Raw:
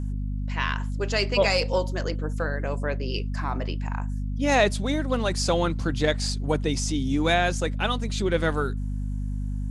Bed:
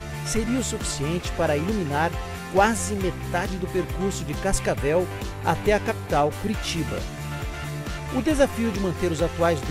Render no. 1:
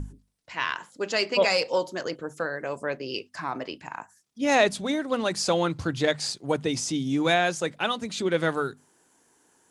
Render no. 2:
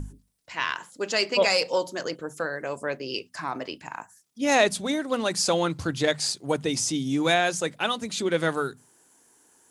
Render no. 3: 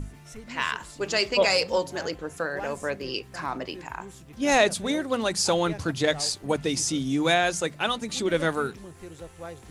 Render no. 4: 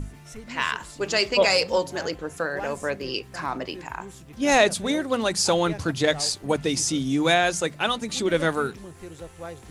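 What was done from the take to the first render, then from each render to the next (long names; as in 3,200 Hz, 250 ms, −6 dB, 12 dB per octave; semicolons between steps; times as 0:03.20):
mains-hum notches 50/100/150/200/250 Hz
high-shelf EQ 7,700 Hz +10 dB; mains-hum notches 60/120/180 Hz
mix in bed −18.5 dB
level +2 dB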